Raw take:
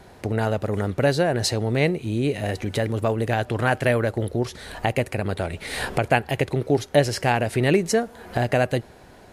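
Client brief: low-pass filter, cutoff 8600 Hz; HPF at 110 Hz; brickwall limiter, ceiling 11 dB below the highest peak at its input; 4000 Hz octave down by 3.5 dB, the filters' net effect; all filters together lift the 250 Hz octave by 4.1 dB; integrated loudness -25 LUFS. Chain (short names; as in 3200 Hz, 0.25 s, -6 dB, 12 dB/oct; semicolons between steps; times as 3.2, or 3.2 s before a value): HPF 110 Hz; LPF 8600 Hz; bell 250 Hz +5.5 dB; bell 4000 Hz -4.5 dB; gain +0.5 dB; limiter -12 dBFS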